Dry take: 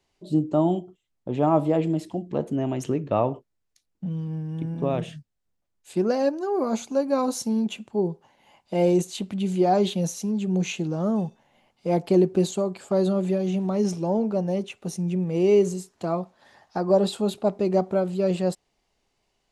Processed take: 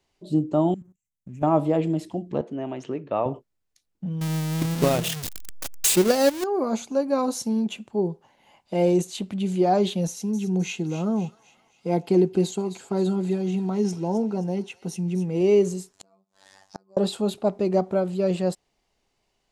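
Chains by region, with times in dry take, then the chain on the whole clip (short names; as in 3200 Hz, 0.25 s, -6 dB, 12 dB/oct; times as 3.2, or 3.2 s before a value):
0.74–1.43 EQ curve 120 Hz 0 dB, 200 Hz +1 dB, 510 Hz -27 dB, 750 Hz -28 dB, 2400 Hz -6 dB, 3700 Hz -28 dB, 6200 Hz +5 dB + level quantiser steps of 14 dB + sample leveller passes 1
2.41–3.26 HPF 420 Hz 6 dB/oct + air absorption 150 m
4.21–6.44 zero-crossing step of -27 dBFS + high shelf 2700 Hz +11 dB + transient shaper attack +7 dB, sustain -10 dB
10.07–15.41 notch comb 590 Hz + thin delay 0.262 s, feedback 46%, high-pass 2100 Hz, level -10.5 dB
15.93–16.97 bell 7900 Hz +14.5 dB 1.5 oct + robotiser 96.4 Hz + flipped gate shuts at -21 dBFS, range -35 dB
whole clip: dry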